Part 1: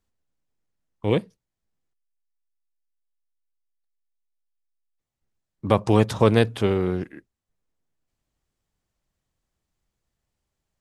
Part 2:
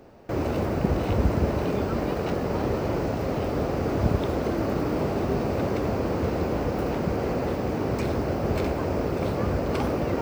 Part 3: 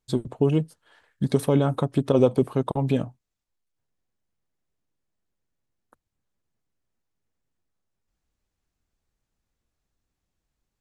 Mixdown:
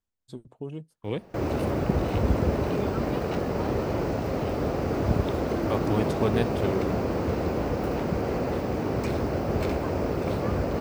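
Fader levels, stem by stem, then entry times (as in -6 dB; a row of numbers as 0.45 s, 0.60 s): -9.5 dB, -1.0 dB, -15.5 dB; 0.00 s, 1.05 s, 0.20 s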